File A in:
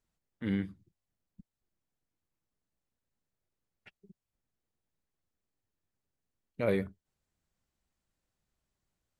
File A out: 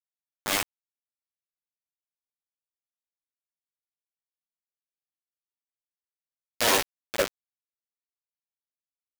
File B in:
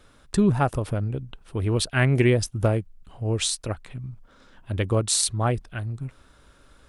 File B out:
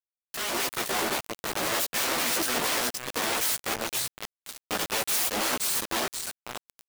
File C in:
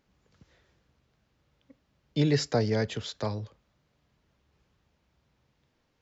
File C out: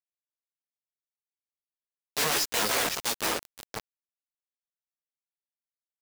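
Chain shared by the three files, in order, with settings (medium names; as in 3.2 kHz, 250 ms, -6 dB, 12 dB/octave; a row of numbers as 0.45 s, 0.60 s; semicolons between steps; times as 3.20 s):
overload inside the chain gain 13 dB; on a send: feedback delay 516 ms, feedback 40%, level -7 dB; on the sum: Chebyshev shaper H 3 -25 dB, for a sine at -9.5 dBFS; integer overflow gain 25.5 dB; chorus voices 6, 0.81 Hz, delay 15 ms, depth 3 ms; high-pass 280 Hz 12 dB/octave; treble shelf 5.4 kHz +3 dB; bit crusher 6-bit; level rider gain up to 7 dB; normalise loudness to -27 LUFS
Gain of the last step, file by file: +5.5 dB, -2.0 dB, -0.5 dB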